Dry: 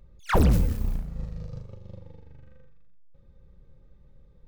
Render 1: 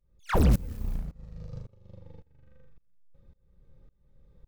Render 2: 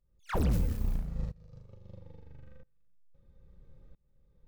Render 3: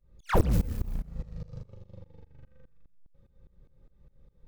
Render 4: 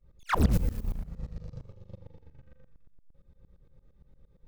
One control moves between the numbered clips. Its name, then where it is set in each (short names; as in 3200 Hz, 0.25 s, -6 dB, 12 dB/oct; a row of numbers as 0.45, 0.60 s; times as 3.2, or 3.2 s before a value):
tremolo, rate: 1.8, 0.76, 4.9, 8.7 Hz